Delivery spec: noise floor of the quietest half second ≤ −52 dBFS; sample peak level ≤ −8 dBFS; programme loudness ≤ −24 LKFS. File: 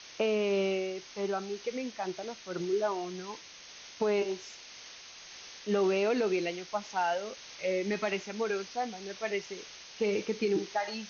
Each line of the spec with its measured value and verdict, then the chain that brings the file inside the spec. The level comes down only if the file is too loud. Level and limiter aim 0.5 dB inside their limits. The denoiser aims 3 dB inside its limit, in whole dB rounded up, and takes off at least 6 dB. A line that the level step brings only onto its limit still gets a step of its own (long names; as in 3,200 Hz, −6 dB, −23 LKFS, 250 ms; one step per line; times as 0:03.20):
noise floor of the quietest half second −50 dBFS: out of spec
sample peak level −17.5 dBFS: in spec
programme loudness −32.5 LKFS: in spec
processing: broadband denoise 6 dB, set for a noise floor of −50 dBFS